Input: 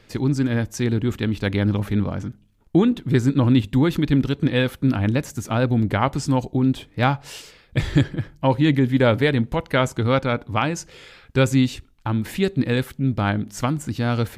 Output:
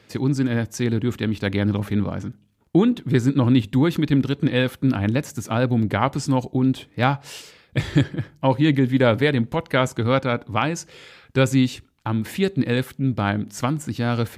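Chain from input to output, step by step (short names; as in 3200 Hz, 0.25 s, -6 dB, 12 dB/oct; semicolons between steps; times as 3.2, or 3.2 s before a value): HPF 89 Hz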